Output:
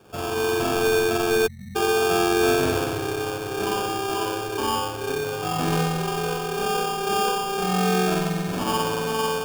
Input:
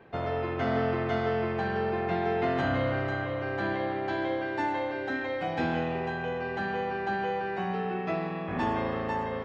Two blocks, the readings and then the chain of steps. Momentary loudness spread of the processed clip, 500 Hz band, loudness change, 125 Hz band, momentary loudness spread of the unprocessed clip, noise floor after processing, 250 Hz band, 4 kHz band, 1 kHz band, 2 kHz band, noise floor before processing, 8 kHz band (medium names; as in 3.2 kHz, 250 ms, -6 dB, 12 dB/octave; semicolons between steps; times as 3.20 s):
7 LU, +7.0 dB, +6.5 dB, +4.5 dB, 4 LU, -32 dBFS, +5.0 dB, +15.5 dB, +6.0 dB, +4.5 dB, -34 dBFS, no reading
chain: spring tank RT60 1.1 s, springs 43 ms, chirp 60 ms, DRR -4 dB; spectral selection erased 1.47–1.76 s, 250–5100 Hz; sample-rate reducer 2 kHz, jitter 0%